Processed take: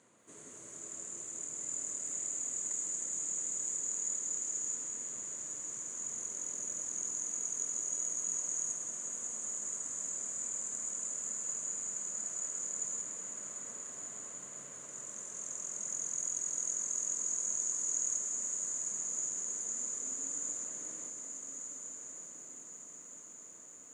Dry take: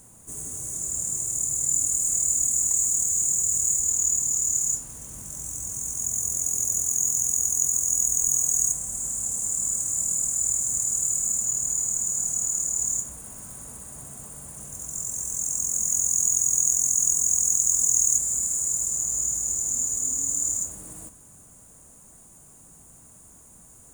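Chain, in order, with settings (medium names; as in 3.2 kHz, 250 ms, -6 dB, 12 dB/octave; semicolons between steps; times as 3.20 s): cabinet simulation 340–5600 Hz, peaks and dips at 800 Hz -9 dB, 2 kHz +3 dB, 5.4 kHz -10 dB; echo that smears into a reverb 1372 ms, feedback 54%, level -7 dB; bit-crushed delay 186 ms, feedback 80%, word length 12-bit, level -9 dB; trim -4 dB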